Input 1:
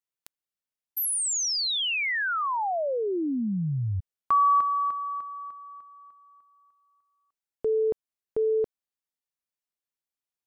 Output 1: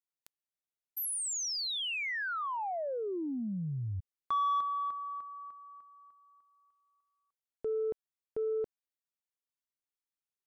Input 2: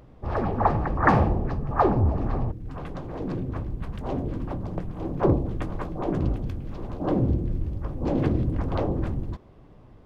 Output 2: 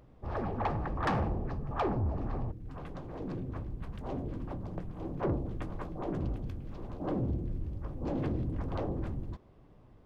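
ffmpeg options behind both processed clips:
-af "asoftclip=type=tanh:threshold=-17dB,volume=-7.5dB"

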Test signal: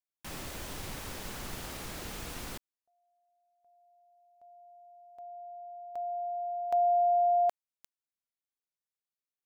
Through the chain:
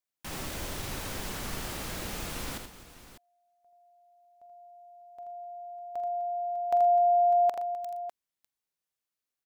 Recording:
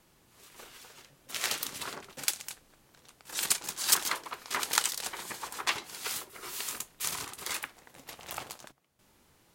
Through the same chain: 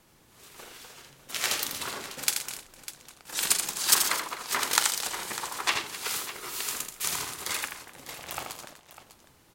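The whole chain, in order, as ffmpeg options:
-af "aecho=1:1:45|81|119|254|600:0.224|0.473|0.15|0.141|0.2,volume=3dB"

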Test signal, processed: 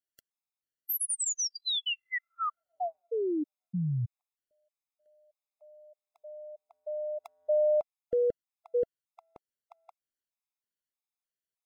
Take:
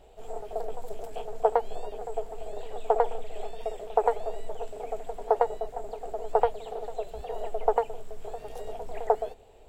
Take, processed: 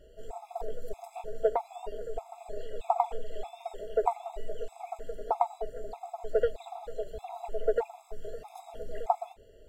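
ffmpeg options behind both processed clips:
-af "afftfilt=real='re*gt(sin(2*PI*1.6*pts/sr)*(1-2*mod(floor(b*sr/1024/680),2)),0)':imag='im*gt(sin(2*PI*1.6*pts/sr)*(1-2*mod(floor(b*sr/1024/680),2)),0)':win_size=1024:overlap=0.75"

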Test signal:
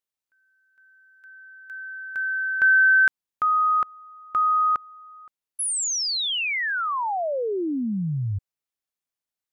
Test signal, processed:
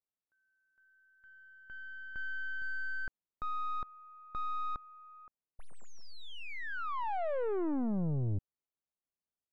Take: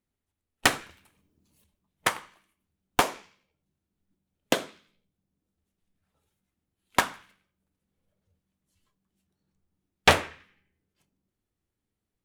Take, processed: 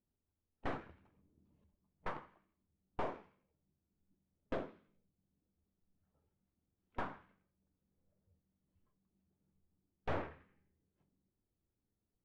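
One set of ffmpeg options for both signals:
-af "aeval=exprs='(tanh(39.8*val(0)+0.6)-tanh(0.6))/39.8':c=same,adynamicsmooth=sensitivity=0.5:basefreq=1.1k,volume=1dB"

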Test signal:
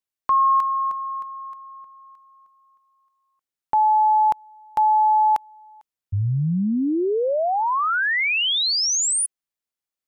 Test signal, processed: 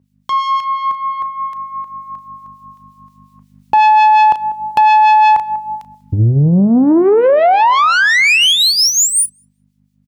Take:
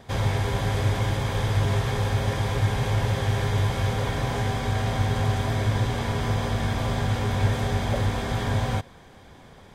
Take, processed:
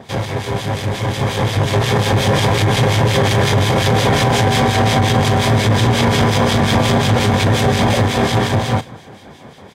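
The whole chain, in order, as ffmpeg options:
-filter_complex "[0:a]acompressor=threshold=-21dB:ratio=2.5:release=982:knee=6:detection=rms,highshelf=f=8.4k:g=-4,aeval=exprs='(tanh(14.1*val(0)+0.3)-tanh(0.3))/14.1':c=same,aeval=exprs='val(0)+0.000794*(sin(2*PI*50*n/s)+sin(2*PI*2*50*n/s)/2+sin(2*PI*3*50*n/s)/3+sin(2*PI*4*50*n/s)/4+sin(2*PI*5*50*n/s)/5)':c=same,highpass=120,asplit=2[a][b];[b]adelay=35,volume=-13.5dB[c];[a][c]amix=inputs=2:normalize=0,dynaudnorm=f=220:g=17:m=12dB,acrossover=split=2000[d][e];[d]aeval=exprs='val(0)*(1-0.7/2+0.7/2*cos(2*PI*5.6*n/s))':c=same[f];[e]aeval=exprs='val(0)*(1-0.7/2-0.7/2*cos(2*PI*5.6*n/s))':c=same[g];[f][g]amix=inputs=2:normalize=0,equalizer=f=1.4k:t=o:w=0.74:g=-3.5,asplit=2[h][i];[i]adelay=194,lowpass=f=1.1k:p=1,volume=-21.5dB,asplit=2[j][k];[k]adelay=194,lowpass=f=1.1k:p=1,volume=0.38,asplit=2[l][m];[m]adelay=194,lowpass=f=1.1k:p=1,volume=0.38[n];[j][l][n]amix=inputs=3:normalize=0[o];[h][o]amix=inputs=2:normalize=0,alimiter=level_in=18.5dB:limit=-1dB:release=50:level=0:latency=1,volume=-4dB"

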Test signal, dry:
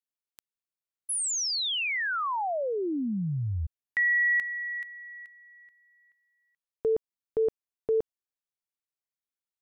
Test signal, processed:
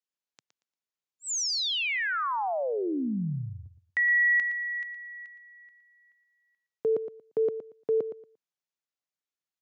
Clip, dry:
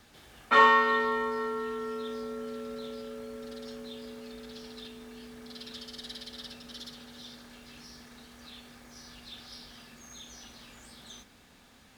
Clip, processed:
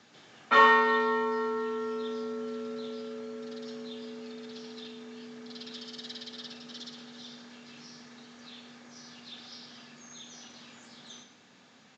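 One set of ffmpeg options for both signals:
-af "highpass=f=130:w=0.5412,highpass=f=130:w=1.3066,aecho=1:1:116|232|348:0.282|0.0592|0.0124,aresample=16000,aresample=44100"

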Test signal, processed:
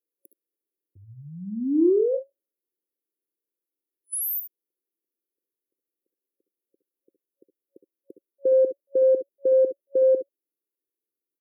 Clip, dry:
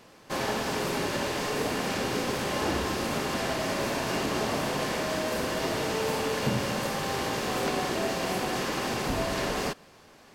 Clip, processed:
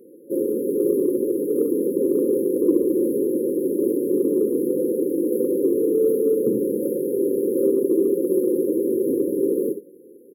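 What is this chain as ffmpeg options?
-filter_complex "[0:a]afftfilt=real='re*(1-between(b*sr/4096,550,10000))':imag='im*(1-between(b*sr/4096,550,10000))':win_size=4096:overlap=0.75,highpass=f=340:t=q:w=3.4,acontrast=39,asplit=2[a][b];[b]aecho=0:1:63|73:0.266|0.251[c];[a][c]amix=inputs=2:normalize=0"

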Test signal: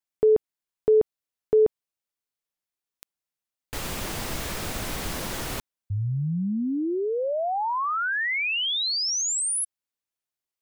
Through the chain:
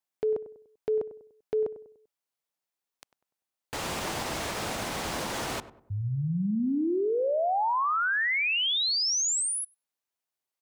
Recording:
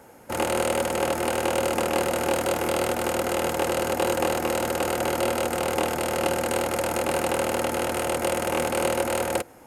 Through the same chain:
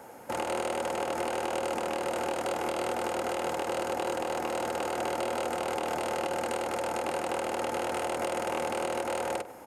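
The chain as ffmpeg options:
-filter_complex "[0:a]highpass=f=140:p=1,acrossover=split=9700[a][b];[b]acompressor=threshold=-48dB:ratio=4:attack=1:release=60[c];[a][c]amix=inputs=2:normalize=0,equalizer=f=810:t=o:w=1.1:g=4.5,acompressor=threshold=-24dB:ratio=6:attack=0.12:release=292:knee=1:detection=peak,asplit=2[d][e];[e]adelay=98,lowpass=f=1.2k:p=1,volume=-13dB,asplit=2[f][g];[g]adelay=98,lowpass=f=1.2k:p=1,volume=0.42,asplit=2[h][i];[i]adelay=98,lowpass=f=1.2k:p=1,volume=0.42,asplit=2[j][k];[k]adelay=98,lowpass=f=1.2k:p=1,volume=0.42[l];[d][f][h][j][l]amix=inputs=5:normalize=0"

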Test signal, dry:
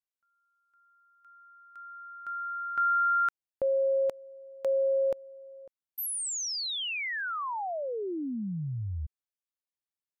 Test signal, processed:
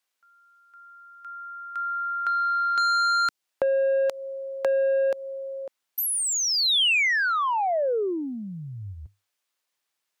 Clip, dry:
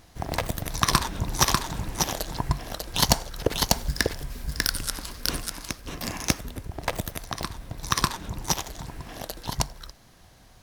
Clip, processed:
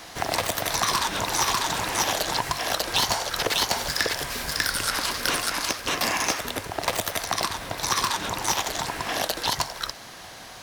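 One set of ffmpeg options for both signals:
-filter_complex "[0:a]adynamicequalizer=threshold=0.00316:dfrequency=100:dqfactor=6.9:tfrequency=100:tqfactor=6.9:attack=5:release=100:ratio=0.375:range=3.5:mode=boostabove:tftype=bell,asplit=2[a][b];[b]highpass=f=720:p=1,volume=25dB,asoftclip=type=tanh:threshold=-5dB[c];[a][c]amix=inputs=2:normalize=0,lowpass=f=6.3k:p=1,volume=-6dB,acrossover=split=390|3100[d][e][f];[d]acompressor=threshold=-35dB:ratio=4[g];[e]acompressor=threshold=-23dB:ratio=4[h];[f]acompressor=threshold=-24dB:ratio=4[i];[g][h][i]amix=inputs=3:normalize=0,volume=-1.5dB"

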